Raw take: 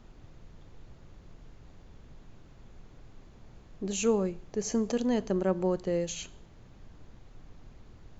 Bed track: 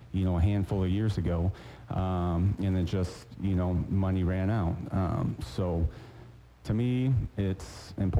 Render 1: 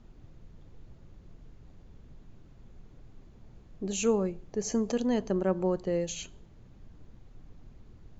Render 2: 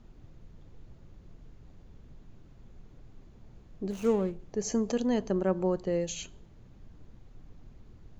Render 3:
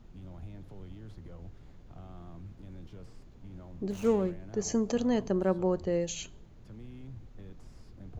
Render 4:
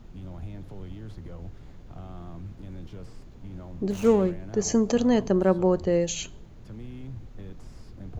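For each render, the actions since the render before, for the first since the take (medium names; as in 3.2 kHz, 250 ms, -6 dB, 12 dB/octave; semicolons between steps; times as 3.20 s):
noise reduction 6 dB, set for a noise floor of -54 dBFS
3.90–4.40 s: median filter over 25 samples
add bed track -20 dB
trim +6.5 dB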